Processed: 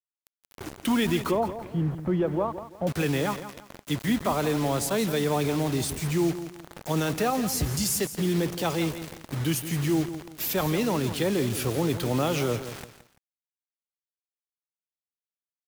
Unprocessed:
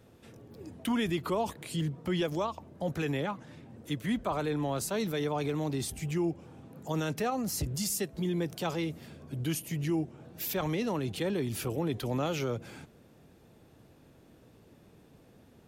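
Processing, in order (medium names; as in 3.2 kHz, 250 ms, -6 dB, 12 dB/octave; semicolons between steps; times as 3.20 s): bit crusher 7-bit; 1.31–2.87 s: low-pass 1.1 kHz 12 dB/octave; bit-crushed delay 169 ms, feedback 35%, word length 9-bit, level -11.5 dB; trim +5.5 dB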